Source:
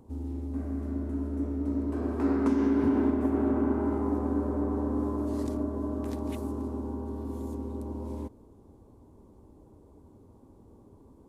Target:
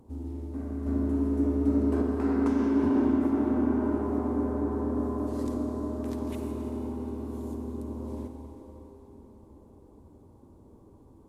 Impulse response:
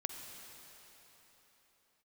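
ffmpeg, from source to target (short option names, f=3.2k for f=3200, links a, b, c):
-filter_complex "[0:a]asettb=1/sr,asplit=3[a][b][c];[a]atrim=end=0.864[d];[b]atrim=start=0.86:end=2.02,asetpts=PTS-STARTPTS,afade=t=in:d=0.004:c=qsin,afade=t=out:st=1.156:d=0.004:c=qsin,acontrast=36[e];[c]atrim=start=2.016[f];[d][e]acrossfade=d=0.004:c1=hsin:c2=qsin[g];[g][f]acrossfade=d=0.004:c1=qsin:c2=hsin[h];[1:a]atrim=start_sample=2205,asetrate=40131,aresample=44100[i];[h][i]afir=irnorm=-1:irlink=0"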